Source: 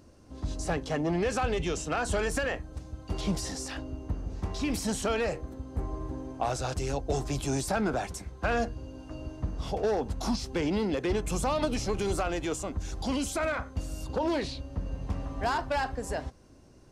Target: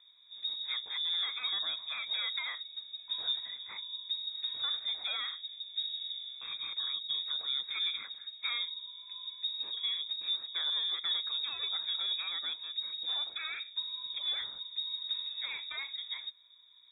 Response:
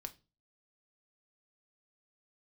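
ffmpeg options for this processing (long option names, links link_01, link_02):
-filter_complex "[0:a]acrossover=split=2900[link_01][link_02];[link_02]acompressor=threshold=-44dB:ratio=4:attack=1:release=60[link_03];[link_01][link_03]amix=inputs=2:normalize=0,asuperstop=centerf=780:order=8:qfactor=0.84,lowpass=frequency=3200:width_type=q:width=0.5098,lowpass=frequency=3200:width_type=q:width=0.6013,lowpass=frequency=3200:width_type=q:width=0.9,lowpass=frequency=3200:width_type=q:width=2.563,afreqshift=-3800,volume=-4.5dB"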